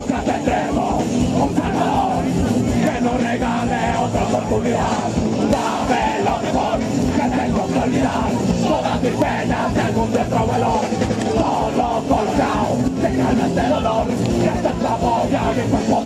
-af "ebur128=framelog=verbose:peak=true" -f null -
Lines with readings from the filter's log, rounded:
Integrated loudness:
  I:         -18.6 LUFS
  Threshold: -28.6 LUFS
Loudness range:
  LRA:         0.6 LU
  Threshold: -38.6 LUFS
  LRA low:   -18.9 LUFS
  LRA high:  -18.3 LUFS
True peak:
  Peak:       -4.2 dBFS